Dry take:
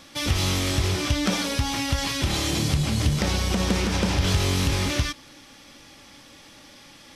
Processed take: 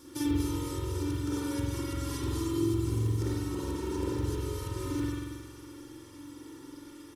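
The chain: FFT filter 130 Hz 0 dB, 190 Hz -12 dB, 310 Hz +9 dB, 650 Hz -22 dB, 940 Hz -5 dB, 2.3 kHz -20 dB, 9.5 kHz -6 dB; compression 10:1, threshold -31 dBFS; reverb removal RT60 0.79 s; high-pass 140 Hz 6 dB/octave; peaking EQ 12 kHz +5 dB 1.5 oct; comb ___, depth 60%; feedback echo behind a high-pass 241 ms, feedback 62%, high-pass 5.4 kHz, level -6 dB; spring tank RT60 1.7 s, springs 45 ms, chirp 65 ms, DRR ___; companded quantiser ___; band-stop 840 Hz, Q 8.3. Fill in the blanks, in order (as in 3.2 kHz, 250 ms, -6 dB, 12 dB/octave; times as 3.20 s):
2.2 ms, -7 dB, 8-bit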